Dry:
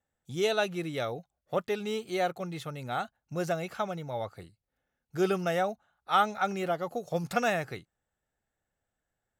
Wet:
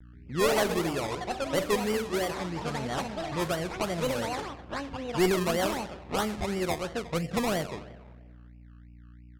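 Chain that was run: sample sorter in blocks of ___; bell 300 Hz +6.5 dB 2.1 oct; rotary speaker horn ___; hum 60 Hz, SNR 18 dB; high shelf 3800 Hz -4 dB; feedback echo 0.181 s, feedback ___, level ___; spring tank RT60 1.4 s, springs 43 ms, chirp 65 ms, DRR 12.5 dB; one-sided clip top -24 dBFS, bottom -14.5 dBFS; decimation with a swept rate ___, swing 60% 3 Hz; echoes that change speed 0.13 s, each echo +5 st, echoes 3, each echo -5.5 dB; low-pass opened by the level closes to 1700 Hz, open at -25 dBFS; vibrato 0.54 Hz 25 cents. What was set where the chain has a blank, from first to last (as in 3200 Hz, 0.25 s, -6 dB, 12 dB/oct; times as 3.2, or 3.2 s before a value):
8 samples, 1 Hz, 48%, -20 dB, 24×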